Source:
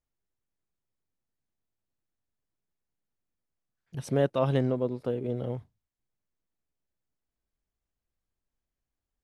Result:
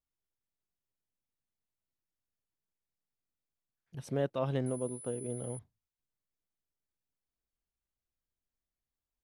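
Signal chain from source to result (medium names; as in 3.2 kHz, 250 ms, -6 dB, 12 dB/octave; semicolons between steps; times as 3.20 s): 4.66–5.59 s: class-D stage that switches slowly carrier 10 kHz; trim -7 dB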